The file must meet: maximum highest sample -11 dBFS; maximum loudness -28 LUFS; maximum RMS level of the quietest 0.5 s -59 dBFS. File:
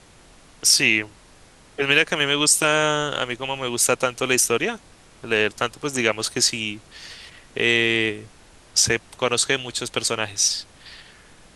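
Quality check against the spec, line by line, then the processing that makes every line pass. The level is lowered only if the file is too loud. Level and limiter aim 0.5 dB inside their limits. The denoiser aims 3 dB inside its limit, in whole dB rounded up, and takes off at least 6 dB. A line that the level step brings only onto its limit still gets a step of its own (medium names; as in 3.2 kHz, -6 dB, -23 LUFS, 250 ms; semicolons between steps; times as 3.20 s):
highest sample -3.0 dBFS: fail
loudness -20.5 LUFS: fail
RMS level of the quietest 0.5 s -50 dBFS: fail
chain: noise reduction 6 dB, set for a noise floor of -50 dBFS; trim -8 dB; peak limiter -11.5 dBFS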